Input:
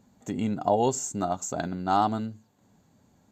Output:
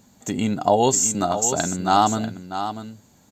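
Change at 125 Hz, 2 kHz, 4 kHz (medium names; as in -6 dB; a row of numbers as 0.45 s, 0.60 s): +5.5 dB, +8.5 dB, +12.5 dB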